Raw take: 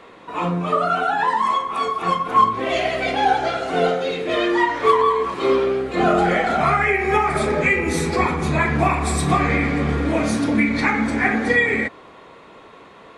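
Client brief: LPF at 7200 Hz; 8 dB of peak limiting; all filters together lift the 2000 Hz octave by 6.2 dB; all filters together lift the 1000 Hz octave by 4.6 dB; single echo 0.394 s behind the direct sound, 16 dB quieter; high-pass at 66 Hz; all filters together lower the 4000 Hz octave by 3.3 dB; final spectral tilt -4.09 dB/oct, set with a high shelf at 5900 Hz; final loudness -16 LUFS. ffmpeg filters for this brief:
-af "highpass=66,lowpass=7.2k,equalizer=f=1k:t=o:g=4,equalizer=f=2k:t=o:g=8,equalizer=f=4k:t=o:g=-6,highshelf=f=5.9k:g=-6,alimiter=limit=-8dB:level=0:latency=1,aecho=1:1:394:0.158,volume=1.5dB"

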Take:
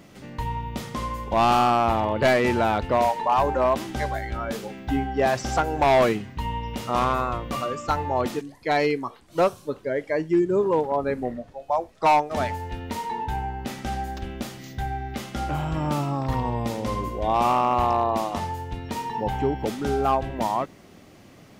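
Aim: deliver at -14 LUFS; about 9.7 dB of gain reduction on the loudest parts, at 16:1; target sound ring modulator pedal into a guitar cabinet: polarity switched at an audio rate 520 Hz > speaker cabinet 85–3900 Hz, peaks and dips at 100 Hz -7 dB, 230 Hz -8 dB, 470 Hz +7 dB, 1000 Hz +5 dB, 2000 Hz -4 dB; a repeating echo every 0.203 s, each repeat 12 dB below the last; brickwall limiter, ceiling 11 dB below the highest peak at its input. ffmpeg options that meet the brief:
-af "acompressor=threshold=-25dB:ratio=16,alimiter=level_in=2.5dB:limit=-24dB:level=0:latency=1,volume=-2.5dB,aecho=1:1:203|406|609:0.251|0.0628|0.0157,aeval=exprs='val(0)*sgn(sin(2*PI*520*n/s))':c=same,highpass=85,equalizer=f=100:t=q:w=4:g=-7,equalizer=f=230:t=q:w=4:g=-8,equalizer=f=470:t=q:w=4:g=7,equalizer=f=1k:t=q:w=4:g=5,equalizer=f=2k:t=q:w=4:g=-4,lowpass=f=3.9k:w=0.5412,lowpass=f=3.9k:w=1.3066,volume=19dB"

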